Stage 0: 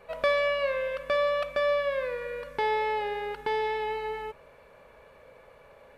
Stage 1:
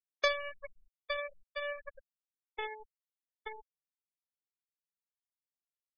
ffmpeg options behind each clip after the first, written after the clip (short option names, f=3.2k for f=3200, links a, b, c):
-af "aecho=1:1:1174:0.0708,aeval=exprs='0.2*(cos(1*acos(clip(val(0)/0.2,-1,1)))-cos(1*PI/2))+0.0708*(cos(3*acos(clip(val(0)/0.2,-1,1)))-cos(3*PI/2))+0.00794*(cos(4*acos(clip(val(0)/0.2,-1,1)))-cos(4*PI/2))':c=same,afftfilt=real='re*gte(hypot(re,im),0.0355)':imag='im*gte(hypot(re,im),0.0355)':win_size=1024:overlap=0.75"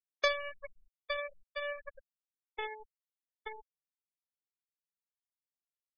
-af anull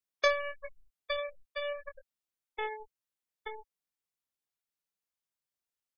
-filter_complex "[0:a]asplit=2[a][b];[b]adelay=21,volume=-7dB[c];[a][c]amix=inputs=2:normalize=0,volume=1.5dB"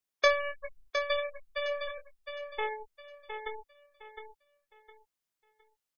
-af "aecho=1:1:711|1422|2133|2844:0.422|0.127|0.038|0.0114,volume=2.5dB"